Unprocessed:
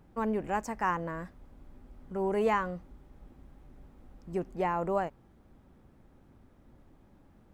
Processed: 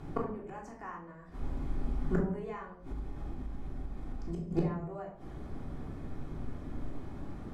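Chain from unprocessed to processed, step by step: Bessel low-pass 8500 Hz; notch 2800 Hz, Q 17; flipped gate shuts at -29 dBFS, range -29 dB; notches 60/120/180 Hz; reverb RT60 0.60 s, pre-delay 3 ms, DRR -2.5 dB; 2.38–4.51 compressor 6:1, threshold -45 dBFS, peak gain reduction 11.5 dB; gain +10.5 dB

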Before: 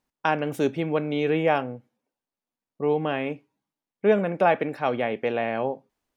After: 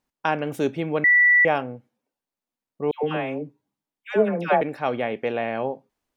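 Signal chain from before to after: 1.04–1.45 bleep 1960 Hz -12.5 dBFS; 2.91–4.61 dispersion lows, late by 0.124 s, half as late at 1000 Hz

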